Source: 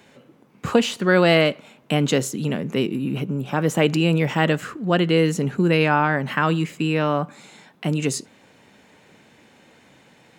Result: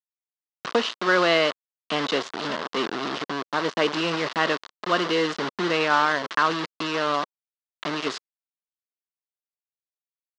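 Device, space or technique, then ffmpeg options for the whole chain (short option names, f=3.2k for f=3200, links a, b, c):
hand-held game console: -af "acrusher=bits=3:mix=0:aa=0.000001,highpass=420,equalizer=f=530:t=q:w=4:g=-4,equalizer=f=800:t=q:w=4:g=-5,equalizer=f=1.1k:t=q:w=4:g=5,equalizer=f=2.4k:t=q:w=4:g=-6,lowpass=f=4.8k:w=0.5412,lowpass=f=4.8k:w=1.3066"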